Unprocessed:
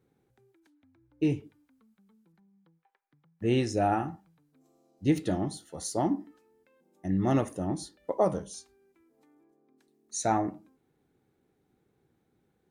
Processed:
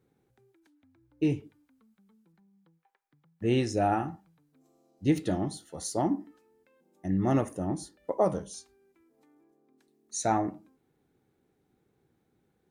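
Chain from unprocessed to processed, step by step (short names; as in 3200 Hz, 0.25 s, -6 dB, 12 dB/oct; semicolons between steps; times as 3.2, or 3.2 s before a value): 6.01–8.25 dynamic EQ 3800 Hz, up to -6 dB, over -58 dBFS, Q 1.6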